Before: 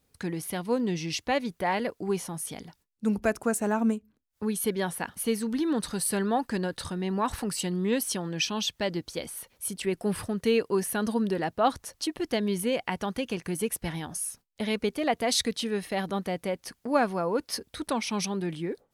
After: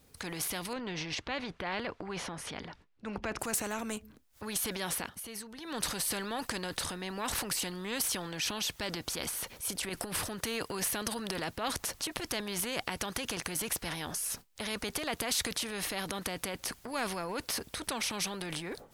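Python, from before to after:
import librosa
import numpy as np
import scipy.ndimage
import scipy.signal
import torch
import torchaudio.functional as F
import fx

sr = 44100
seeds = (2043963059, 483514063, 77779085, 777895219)

y = fx.lowpass(x, sr, hz=2700.0, slope=12, at=(0.73, 3.39))
y = fx.over_compress(y, sr, threshold_db=-29.0, ratio=-0.5, at=(9.89, 10.29))
y = fx.edit(y, sr, fx.fade_down_up(start_s=4.95, length_s=0.8, db=-15.5, fade_s=0.15), tone=tone)
y = fx.transient(y, sr, attack_db=-3, sustain_db=7)
y = fx.spectral_comp(y, sr, ratio=2.0)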